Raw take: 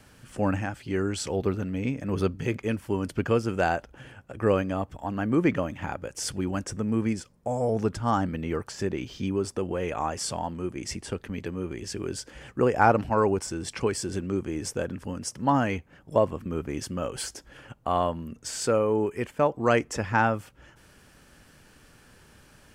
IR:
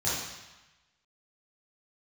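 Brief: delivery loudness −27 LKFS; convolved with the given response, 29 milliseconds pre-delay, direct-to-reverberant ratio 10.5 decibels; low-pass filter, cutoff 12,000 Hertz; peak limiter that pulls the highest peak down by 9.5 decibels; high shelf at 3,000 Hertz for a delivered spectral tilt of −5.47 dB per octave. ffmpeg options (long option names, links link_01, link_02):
-filter_complex "[0:a]lowpass=12000,highshelf=frequency=3000:gain=-8.5,alimiter=limit=-16dB:level=0:latency=1,asplit=2[link_01][link_02];[1:a]atrim=start_sample=2205,adelay=29[link_03];[link_02][link_03]afir=irnorm=-1:irlink=0,volume=-20dB[link_04];[link_01][link_04]amix=inputs=2:normalize=0,volume=2.5dB"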